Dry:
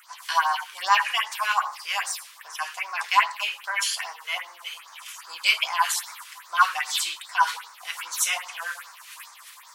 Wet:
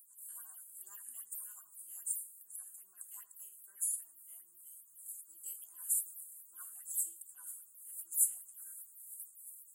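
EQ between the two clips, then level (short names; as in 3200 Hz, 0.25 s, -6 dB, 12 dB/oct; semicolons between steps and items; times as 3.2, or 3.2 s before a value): inverse Chebyshev band-stop 490–4200 Hz, stop band 50 dB; Butterworth band-stop 5500 Hz, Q 1.7; high shelf 3700 Hz -9 dB; +9.0 dB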